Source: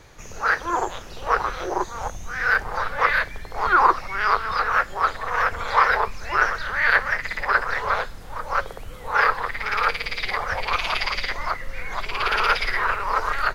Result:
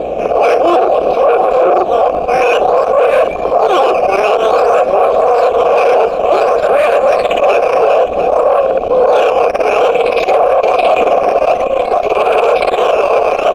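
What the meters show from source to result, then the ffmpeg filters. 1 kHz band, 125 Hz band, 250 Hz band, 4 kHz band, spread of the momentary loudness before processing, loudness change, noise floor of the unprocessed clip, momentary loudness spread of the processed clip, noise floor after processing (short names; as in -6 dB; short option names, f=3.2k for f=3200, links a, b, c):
+10.5 dB, n/a, +16.5 dB, +5.5 dB, 11 LU, +12.0 dB, -38 dBFS, 2 LU, -17 dBFS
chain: -filter_complex "[0:a]acrusher=samples=8:mix=1:aa=0.000001:lfo=1:lforange=8:lforate=0.55,lowshelf=f=760:t=q:w=3:g=13.5,acompressor=threshold=-17dB:ratio=3,aeval=exprs='val(0)+0.0224*(sin(2*PI*60*n/s)+sin(2*PI*2*60*n/s)/2+sin(2*PI*3*60*n/s)/3+sin(2*PI*4*60*n/s)/4+sin(2*PI*5*60*n/s)/5)':c=same,equalizer=f=110:t=o:w=0.56:g=-13,asoftclip=type=tanh:threshold=-20.5dB,asplit=3[a][b][c];[a]bandpass=f=730:t=q:w=8,volume=0dB[d];[b]bandpass=f=1.09k:t=q:w=8,volume=-6dB[e];[c]bandpass=f=2.44k:t=q:w=8,volume=-9dB[f];[d][e][f]amix=inputs=3:normalize=0,aecho=1:1:697:0.158,alimiter=level_in=34.5dB:limit=-1dB:release=50:level=0:latency=1,volume=-1dB"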